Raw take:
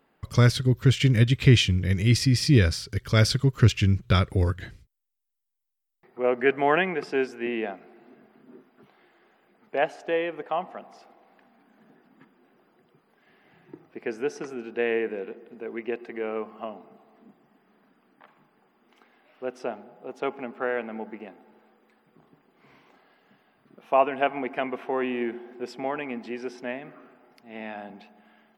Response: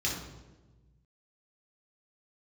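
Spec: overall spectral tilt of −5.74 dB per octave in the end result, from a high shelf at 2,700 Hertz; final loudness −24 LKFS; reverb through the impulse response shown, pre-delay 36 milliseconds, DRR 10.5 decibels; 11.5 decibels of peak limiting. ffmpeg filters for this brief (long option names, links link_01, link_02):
-filter_complex "[0:a]highshelf=frequency=2700:gain=-5.5,alimiter=limit=-17.5dB:level=0:latency=1,asplit=2[link_01][link_02];[1:a]atrim=start_sample=2205,adelay=36[link_03];[link_02][link_03]afir=irnorm=-1:irlink=0,volume=-17.5dB[link_04];[link_01][link_04]amix=inputs=2:normalize=0,volume=5dB"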